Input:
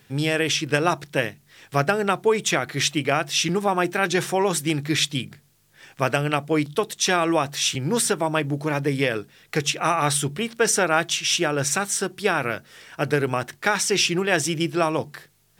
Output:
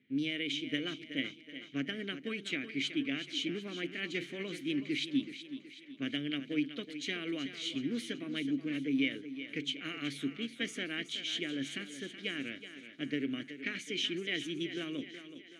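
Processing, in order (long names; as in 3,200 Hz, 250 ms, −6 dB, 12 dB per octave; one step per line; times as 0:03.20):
low-pass that shuts in the quiet parts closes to 1,900 Hz, open at −19.5 dBFS
formants moved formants +2 semitones
formant filter i
on a send: feedback echo with a high-pass in the loop 374 ms, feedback 52%, high-pass 160 Hz, level −11 dB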